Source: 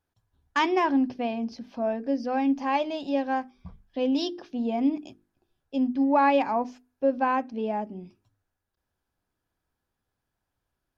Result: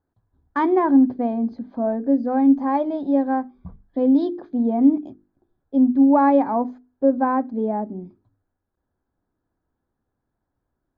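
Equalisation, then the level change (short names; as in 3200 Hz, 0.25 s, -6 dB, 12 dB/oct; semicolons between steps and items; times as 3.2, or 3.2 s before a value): running mean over 16 samples; air absorption 69 m; bell 280 Hz +5 dB 0.93 oct; +4.5 dB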